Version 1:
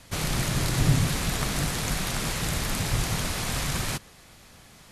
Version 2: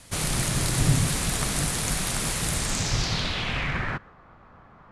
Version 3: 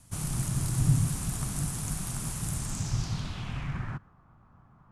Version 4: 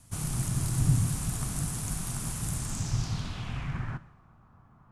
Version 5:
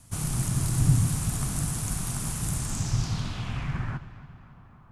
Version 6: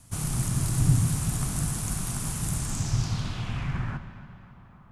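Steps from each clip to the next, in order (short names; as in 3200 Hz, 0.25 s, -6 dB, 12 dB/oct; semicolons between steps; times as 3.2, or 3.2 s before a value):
low-pass sweep 9900 Hz -> 1200 Hz, 2.53–4.17
ten-band EQ 125 Hz +6 dB, 500 Hz -10 dB, 2000 Hz -9 dB, 4000 Hz -9 dB; gain -6 dB
two-slope reverb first 0.77 s, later 2.4 s, from -17 dB, DRR 14 dB
darkening echo 0.275 s, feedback 61%, low-pass 4900 Hz, level -16 dB; gain +3 dB
spring tank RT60 2.6 s, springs 56 ms, chirp 70 ms, DRR 12.5 dB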